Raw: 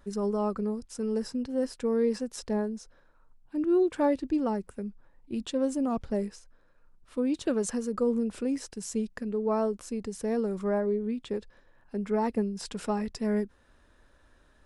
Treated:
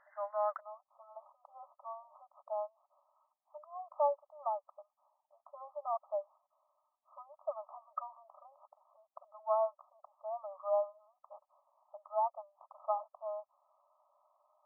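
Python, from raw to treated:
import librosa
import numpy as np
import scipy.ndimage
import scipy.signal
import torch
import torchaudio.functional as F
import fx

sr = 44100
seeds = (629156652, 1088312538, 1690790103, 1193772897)

y = fx.brickwall_bandpass(x, sr, low_hz=570.0, high_hz=fx.steps((0.0, 2100.0), (0.59, 1300.0)))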